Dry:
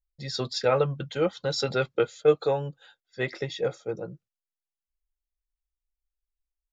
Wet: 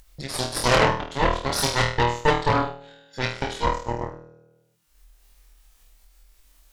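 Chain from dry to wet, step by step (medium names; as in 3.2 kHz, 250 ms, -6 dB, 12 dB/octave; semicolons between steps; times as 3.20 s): flutter echo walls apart 4.3 m, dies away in 0.71 s; Chebyshev shaper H 3 -14 dB, 6 -8 dB, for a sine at -8 dBFS; upward compressor, threshold -25 dBFS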